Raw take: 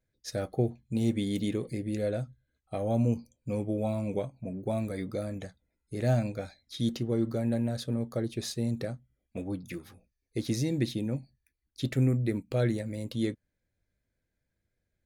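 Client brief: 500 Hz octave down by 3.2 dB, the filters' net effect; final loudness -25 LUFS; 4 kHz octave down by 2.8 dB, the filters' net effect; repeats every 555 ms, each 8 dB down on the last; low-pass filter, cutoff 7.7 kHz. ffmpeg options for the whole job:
-af "lowpass=7700,equalizer=f=500:t=o:g=-4,equalizer=f=4000:t=o:g=-3,aecho=1:1:555|1110|1665|2220|2775:0.398|0.159|0.0637|0.0255|0.0102,volume=2.37"

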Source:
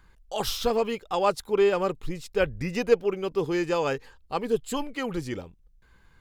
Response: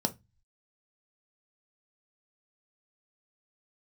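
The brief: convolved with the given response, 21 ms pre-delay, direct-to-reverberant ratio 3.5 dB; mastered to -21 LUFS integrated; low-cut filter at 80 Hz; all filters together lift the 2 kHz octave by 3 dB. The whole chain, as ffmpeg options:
-filter_complex "[0:a]highpass=80,equalizer=f=2000:t=o:g=4,asplit=2[s0][s1];[1:a]atrim=start_sample=2205,adelay=21[s2];[s1][s2]afir=irnorm=-1:irlink=0,volume=0.335[s3];[s0][s3]amix=inputs=2:normalize=0,volume=1.5"

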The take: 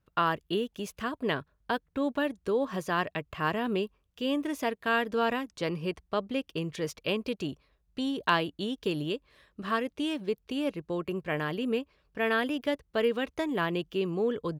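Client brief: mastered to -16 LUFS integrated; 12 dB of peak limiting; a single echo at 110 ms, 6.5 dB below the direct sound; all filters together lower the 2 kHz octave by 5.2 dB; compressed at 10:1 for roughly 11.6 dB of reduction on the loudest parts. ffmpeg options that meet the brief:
-af "equalizer=f=2000:t=o:g=-7,acompressor=threshold=0.0178:ratio=10,alimiter=level_in=2.82:limit=0.0631:level=0:latency=1,volume=0.355,aecho=1:1:110:0.473,volume=20"

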